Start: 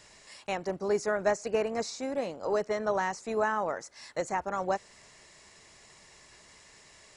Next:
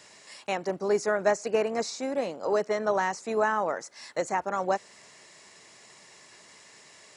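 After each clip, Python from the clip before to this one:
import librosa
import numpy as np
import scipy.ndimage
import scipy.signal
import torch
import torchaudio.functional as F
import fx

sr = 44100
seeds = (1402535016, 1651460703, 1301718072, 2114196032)

y = scipy.signal.sosfilt(scipy.signal.butter(2, 160.0, 'highpass', fs=sr, output='sos'), x)
y = y * 10.0 ** (3.0 / 20.0)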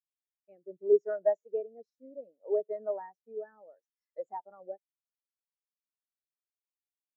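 y = fx.rotary(x, sr, hz=0.65)
y = fx.spectral_expand(y, sr, expansion=2.5)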